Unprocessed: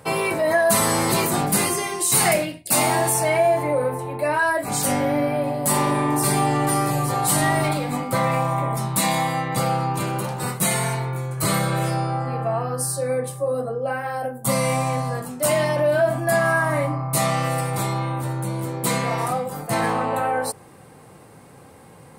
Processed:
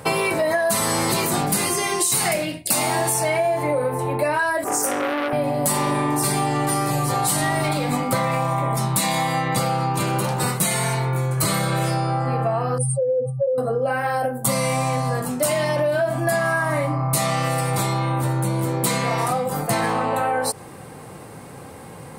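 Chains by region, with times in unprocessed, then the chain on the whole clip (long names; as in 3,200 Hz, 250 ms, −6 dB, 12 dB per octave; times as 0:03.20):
0:04.64–0:05.33: Chebyshev band-stop filter 1,400–5,700 Hz, order 3 + low shelf with overshoot 250 Hz −11.5 dB, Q 3 + saturating transformer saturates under 1,700 Hz
0:12.78–0:13.58: expanding power law on the bin magnitudes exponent 2.8 + upward compression, threshold −32 dBFS
whole clip: dynamic equaliser 4,800 Hz, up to +3 dB, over −38 dBFS, Q 0.73; downward compressor 6 to 1, threshold −26 dBFS; level +7.5 dB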